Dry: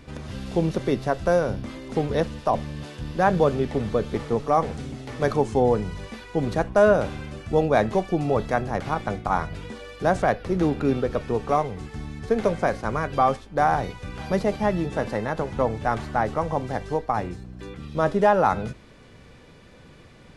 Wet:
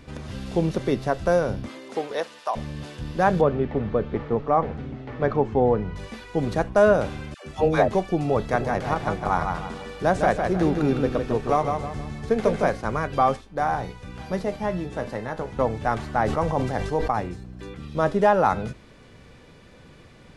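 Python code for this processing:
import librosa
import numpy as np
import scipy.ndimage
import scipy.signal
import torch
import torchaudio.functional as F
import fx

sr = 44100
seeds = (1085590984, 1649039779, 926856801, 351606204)

y = fx.highpass(x, sr, hz=fx.line((1.67, 260.0), (2.55, 930.0)), slope=12, at=(1.67, 2.55), fade=0.02)
y = fx.lowpass(y, sr, hz=2200.0, slope=12, at=(3.41, 5.96))
y = fx.dispersion(y, sr, late='lows', ms=126.0, hz=580.0, at=(7.34, 7.88))
y = fx.echo_feedback(y, sr, ms=157, feedback_pct=38, wet_db=-5.0, at=(8.52, 12.7), fade=0.02)
y = fx.comb_fb(y, sr, f0_hz=61.0, decay_s=0.24, harmonics='all', damping=0.0, mix_pct=60, at=(13.41, 15.59))
y = fx.sustainer(y, sr, db_per_s=45.0, at=(16.16, 17.1))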